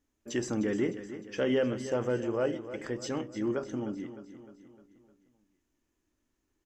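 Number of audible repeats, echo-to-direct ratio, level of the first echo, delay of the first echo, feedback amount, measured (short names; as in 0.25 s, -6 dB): 4, -11.0 dB, -12.5 dB, 0.305 s, 51%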